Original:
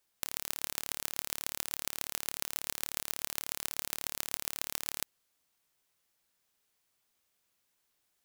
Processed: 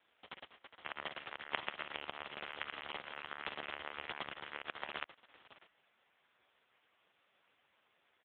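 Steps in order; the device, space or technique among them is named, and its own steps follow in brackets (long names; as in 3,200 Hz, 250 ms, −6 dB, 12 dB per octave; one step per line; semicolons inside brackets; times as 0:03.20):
satellite phone (band-pass filter 300–3,300 Hz; single-tap delay 616 ms −18 dB; level +17.5 dB; AMR narrowband 4.75 kbit/s 8,000 Hz)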